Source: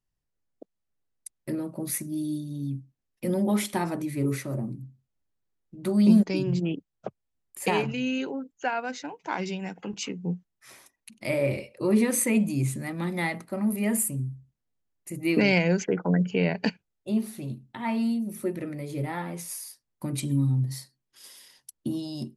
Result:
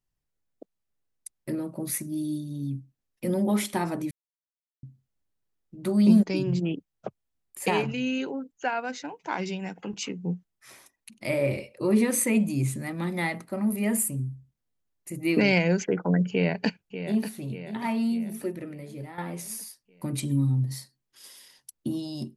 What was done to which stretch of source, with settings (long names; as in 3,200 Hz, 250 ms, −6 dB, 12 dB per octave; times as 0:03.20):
0:04.11–0:04.83: silence
0:16.31–0:17.33: delay throw 590 ms, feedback 55%, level −10.5 dB
0:18.16–0:19.18: fade out, to −11.5 dB